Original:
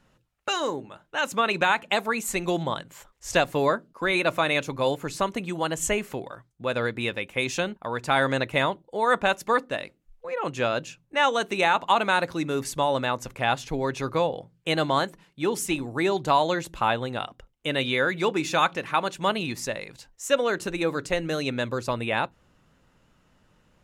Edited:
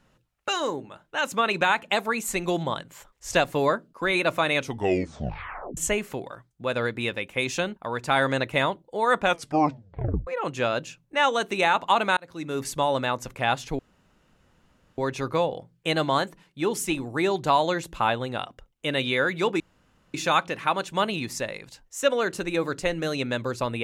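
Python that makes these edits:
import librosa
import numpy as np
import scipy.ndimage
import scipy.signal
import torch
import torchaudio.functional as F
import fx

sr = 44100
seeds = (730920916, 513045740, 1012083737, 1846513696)

y = fx.edit(x, sr, fx.tape_stop(start_s=4.57, length_s=1.2),
    fx.tape_stop(start_s=9.23, length_s=1.04),
    fx.fade_in_span(start_s=12.17, length_s=0.49),
    fx.insert_room_tone(at_s=13.79, length_s=1.19),
    fx.insert_room_tone(at_s=18.41, length_s=0.54), tone=tone)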